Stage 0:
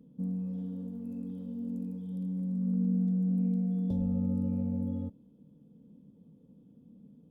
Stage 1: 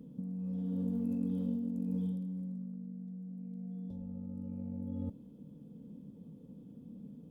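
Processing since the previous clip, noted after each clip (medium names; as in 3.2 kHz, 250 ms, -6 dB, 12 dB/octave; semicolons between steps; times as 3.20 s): compressor with a negative ratio -39 dBFS, ratio -1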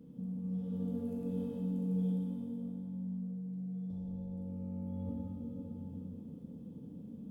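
plate-style reverb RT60 4.1 s, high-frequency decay 0.65×, DRR -6.5 dB; trim -4.5 dB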